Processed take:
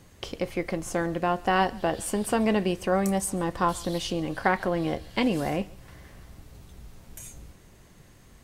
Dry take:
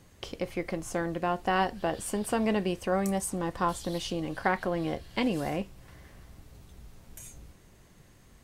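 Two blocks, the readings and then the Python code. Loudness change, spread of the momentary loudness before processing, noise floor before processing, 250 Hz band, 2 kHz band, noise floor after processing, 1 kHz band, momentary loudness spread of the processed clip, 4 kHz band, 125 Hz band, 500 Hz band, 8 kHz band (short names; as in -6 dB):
+3.5 dB, 15 LU, -57 dBFS, +3.5 dB, +3.5 dB, -54 dBFS, +3.5 dB, 15 LU, +3.5 dB, +3.5 dB, +3.5 dB, +3.5 dB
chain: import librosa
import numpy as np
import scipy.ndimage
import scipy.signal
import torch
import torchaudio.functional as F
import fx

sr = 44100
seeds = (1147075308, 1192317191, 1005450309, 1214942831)

y = x + 10.0 ** (-24.0 / 20.0) * np.pad(x, (int(139 * sr / 1000.0), 0))[:len(x)]
y = y * 10.0 ** (3.5 / 20.0)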